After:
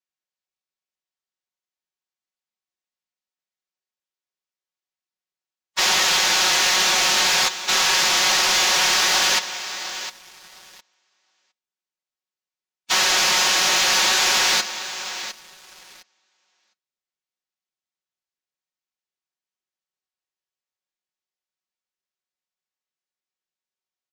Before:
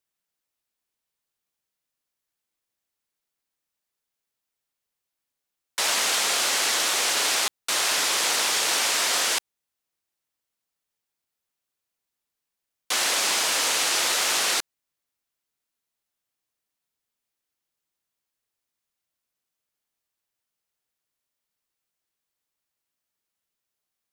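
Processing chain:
in parallel at −6.5 dB: soft clipping −22.5 dBFS, distortion −12 dB
on the sum: low-pass filter 7,400 Hz 24 dB per octave
repeating echo 709 ms, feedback 30%, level −15.5 dB
on a send at −17.5 dB: convolution reverb RT60 0.40 s, pre-delay 3 ms
on the sum: phase-vocoder pitch shift with formants kept −8 semitones
low-shelf EQ 220 Hz −9 dB
leveller curve on the samples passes 3
comb filter 5.4 ms, depth 73%
level −4.5 dB

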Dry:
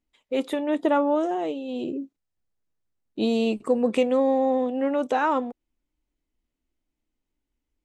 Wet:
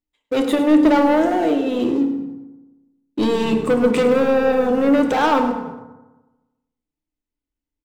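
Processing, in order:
leveller curve on the samples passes 3
echo with shifted repeats 103 ms, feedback 43%, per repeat −36 Hz, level −12.5 dB
feedback delay network reverb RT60 1.1 s, low-frequency decay 1.1×, high-frequency decay 0.45×, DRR 5 dB
level −2 dB

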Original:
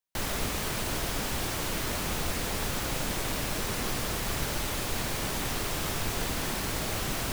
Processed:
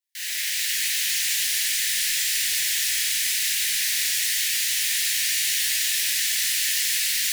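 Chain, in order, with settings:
elliptic high-pass filter 1,800 Hz, stop band 40 dB
reverb with rising layers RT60 3.2 s, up +7 semitones, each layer −2 dB, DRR −10 dB

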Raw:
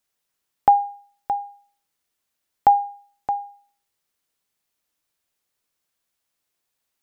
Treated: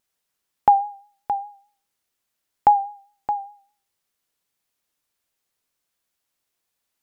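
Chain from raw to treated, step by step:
pitch vibrato 4.9 Hz 43 cents

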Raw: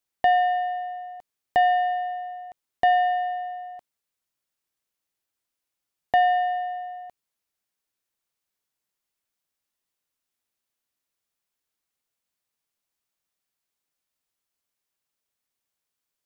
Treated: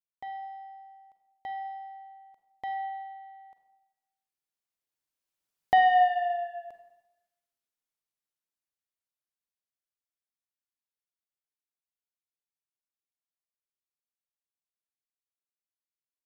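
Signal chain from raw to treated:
source passing by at 0:06.02, 24 m/s, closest 13 metres
four-comb reverb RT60 1 s, combs from 33 ms, DRR 7 dB

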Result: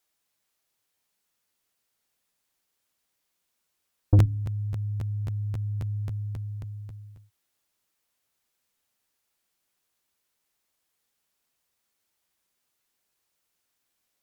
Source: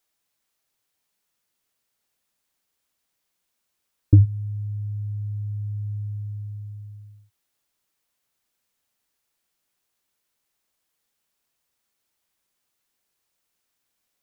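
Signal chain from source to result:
hum removal 69.72 Hz, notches 4
tube saturation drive 12 dB, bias 0.25
regular buffer underruns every 0.27 s, samples 512, repeat, from 0:00.40

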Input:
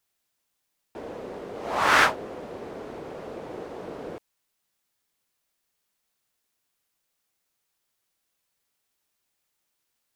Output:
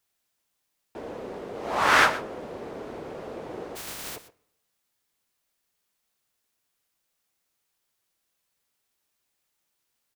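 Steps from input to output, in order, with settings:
0:03.75–0:04.15: compressing power law on the bin magnitudes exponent 0.15
single-tap delay 121 ms −15.5 dB
on a send at −20.5 dB: convolution reverb RT60 0.85 s, pre-delay 9 ms

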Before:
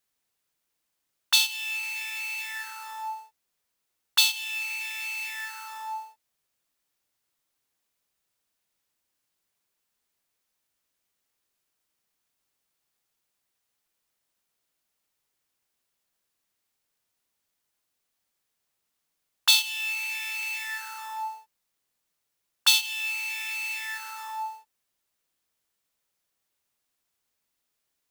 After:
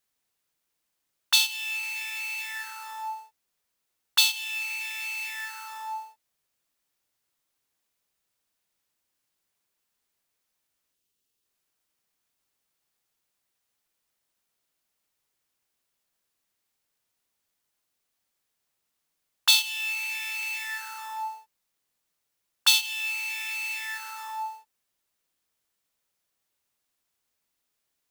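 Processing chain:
gain on a spectral selection 0:10.94–0:11.45, 500–2,500 Hz −7 dB

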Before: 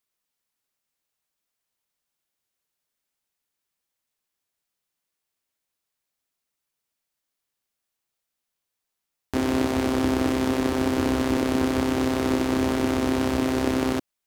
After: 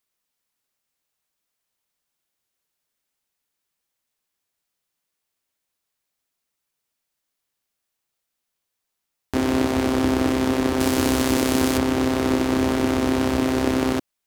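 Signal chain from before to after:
0:10.80–0:11.78: high-shelf EQ 4,200 Hz +11.5 dB
level +2.5 dB

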